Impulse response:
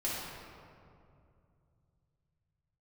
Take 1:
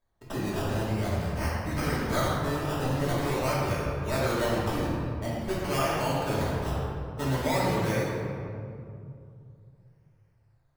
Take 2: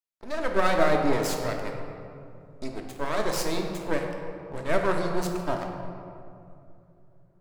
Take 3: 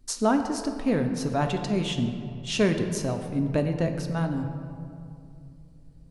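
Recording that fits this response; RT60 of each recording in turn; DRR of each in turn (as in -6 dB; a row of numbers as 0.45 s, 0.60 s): 1; 2.5 s, 2.6 s, 2.6 s; -8.0 dB, 1.5 dB, 5.5 dB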